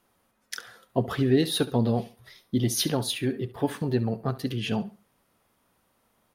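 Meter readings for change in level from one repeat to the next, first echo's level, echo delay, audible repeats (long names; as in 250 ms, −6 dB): −11.5 dB, −16.5 dB, 69 ms, 2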